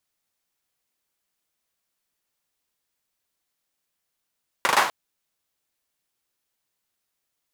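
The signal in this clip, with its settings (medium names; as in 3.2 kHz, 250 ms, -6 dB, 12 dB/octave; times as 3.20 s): hand clap length 0.25 s, apart 39 ms, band 1 kHz, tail 0.48 s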